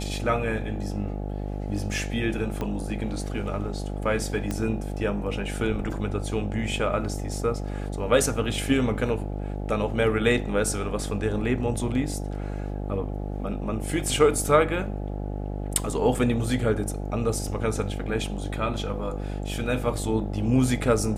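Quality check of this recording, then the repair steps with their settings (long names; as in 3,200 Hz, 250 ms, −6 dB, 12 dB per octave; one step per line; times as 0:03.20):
mains buzz 50 Hz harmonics 17 −31 dBFS
0:02.61: click −17 dBFS
0:04.51: click −15 dBFS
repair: click removal
hum removal 50 Hz, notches 17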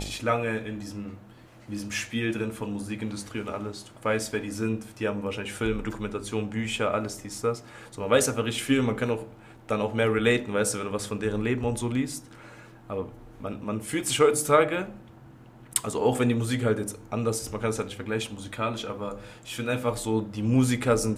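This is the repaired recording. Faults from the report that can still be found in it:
0:02.61: click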